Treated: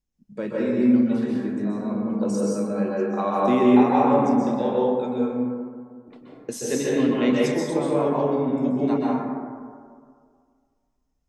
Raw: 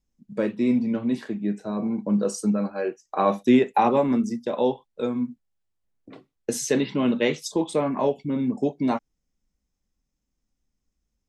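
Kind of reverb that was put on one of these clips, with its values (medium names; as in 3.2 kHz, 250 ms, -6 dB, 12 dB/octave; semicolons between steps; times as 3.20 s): plate-style reverb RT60 2 s, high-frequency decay 0.3×, pre-delay 115 ms, DRR -5.5 dB; trim -5.5 dB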